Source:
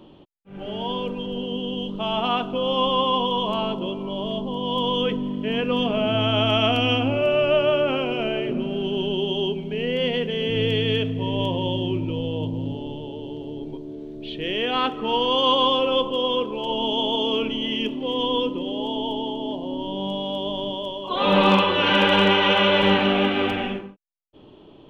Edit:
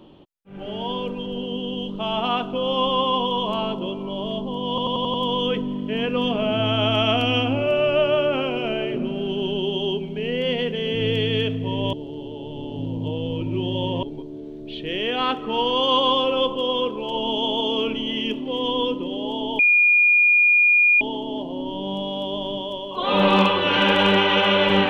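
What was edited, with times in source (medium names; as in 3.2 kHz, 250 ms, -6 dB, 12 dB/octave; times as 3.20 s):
4.69 s: stutter 0.09 s, 6 plays
11.48–13.58 s: reverse
19.14 s: add tone 2.43 kHz -12.5 dBFS 1.42 s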